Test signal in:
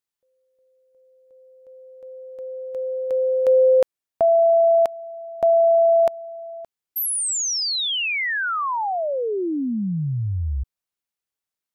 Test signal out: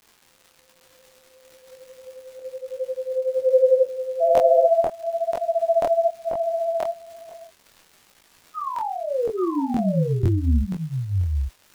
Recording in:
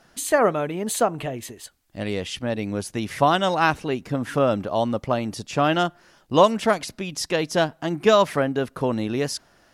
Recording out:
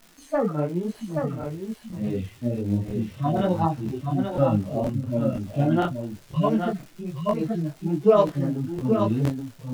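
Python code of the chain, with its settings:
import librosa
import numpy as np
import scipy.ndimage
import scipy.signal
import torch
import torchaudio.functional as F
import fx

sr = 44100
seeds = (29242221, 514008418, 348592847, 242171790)

p1 = fx.hpss_only(x, sr, part='harmonic')
p2 = fx.tilt_eq(p1, sr, slope=-2.5)
p3 = fx.dmg_crackle(p2, sr, seeds[0], per_s=240.0, level_db=-34.0)
p4 = p3 + fx.echo_single(p3, sr, ms=827, db=-5.0, dry=0)
p5 = fx.buffer_crackle(p4, sr, first_s=0.9, period_s=0.49, block=1024, kind='repeat')
y = fx.detune_double(p5, sr, cents=38)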